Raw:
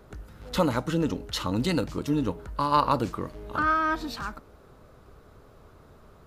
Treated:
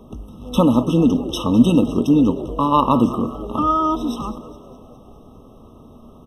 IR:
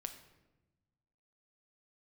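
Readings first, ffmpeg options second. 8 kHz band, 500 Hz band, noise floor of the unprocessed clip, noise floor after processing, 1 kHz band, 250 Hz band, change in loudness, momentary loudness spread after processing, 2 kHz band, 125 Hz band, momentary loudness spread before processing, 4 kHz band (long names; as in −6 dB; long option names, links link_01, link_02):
can't be measured, +8.0 dB, −54 dBFS, −45 dBFS, +6.0 dB, +13.5 dB, +9.5 dB, 10 LU, −10.5 dB, +9.0 dB, 12 LU, +4.0 dB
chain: -filter_complex "[0:a]equalizer=frequency=240:width=3.2:gain=14,asplit=7[link_01][link_02][link_03][link_04][link_05][link_06][link_07];[link_02]adelay=205,afreqshift=88,volume=-16.5dB[link_08];[link_03]adelay=410,afreqshift=176,volume=-21.1dB[link_09];[link_04]adelay=615,afreqshift=264,volume=-25.7dB[link_10];[link_05]adelay=820,afreqshift=352,volume=-30.2dB[link_11];[link_06]adelay=1025,afreqshift=440,volume=-34.8dB[link_12];[link_07]adelay=1230,afreqshift=528,volume=-39.4dB[link_13];[link_01][link_08][link_09][link_10][link_11][link_12][link_13]amix=inputs=7:normalize=0,asplit=2[link_14][link_15];[1:a]atrim=start_sample=2205[link_16];[link_15][link_16]afir=irnorm=-1:irlink=0,volume=-1dB[link_17];[link_14][link_17]amix=inputs=2:normalize=0,afftfilt=real='re*eq(mod(floor(b*sr/1024/1300),2),0)':imag='im*eq(mod(floor(b*sr/1024/1300),2),0)':win_size=1024:overlap=0.75,volume=2dB"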